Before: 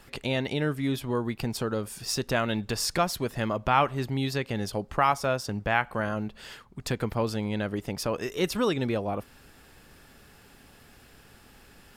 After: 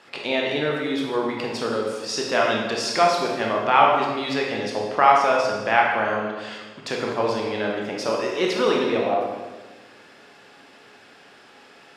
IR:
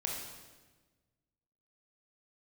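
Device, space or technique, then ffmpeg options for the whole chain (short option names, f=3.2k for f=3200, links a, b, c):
supermarket ceiling speaker: -filter_complex "[0:a]highpass=340,lowpass=5k[a];[1:a]atrim=start_sample=2205[b];[a][b]afir=irnorm=-1:irlink=0,volume=5.5dB"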